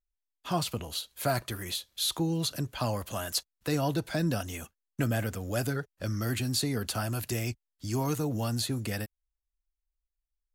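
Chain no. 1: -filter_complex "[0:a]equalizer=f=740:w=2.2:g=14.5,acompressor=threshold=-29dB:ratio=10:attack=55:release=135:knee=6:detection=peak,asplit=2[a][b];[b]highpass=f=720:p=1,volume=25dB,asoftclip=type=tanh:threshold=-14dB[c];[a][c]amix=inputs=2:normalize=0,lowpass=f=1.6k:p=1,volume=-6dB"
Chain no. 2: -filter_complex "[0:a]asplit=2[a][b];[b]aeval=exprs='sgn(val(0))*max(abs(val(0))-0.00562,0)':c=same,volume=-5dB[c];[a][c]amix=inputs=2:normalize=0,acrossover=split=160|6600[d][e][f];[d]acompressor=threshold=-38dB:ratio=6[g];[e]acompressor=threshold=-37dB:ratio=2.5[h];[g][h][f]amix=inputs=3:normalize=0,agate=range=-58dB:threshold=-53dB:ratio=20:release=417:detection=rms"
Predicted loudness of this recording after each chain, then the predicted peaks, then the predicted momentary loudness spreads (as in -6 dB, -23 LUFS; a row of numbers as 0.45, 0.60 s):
-26.0, -34.0 LUFS; -14.5, -16.0 dBFS; 6, 7 LU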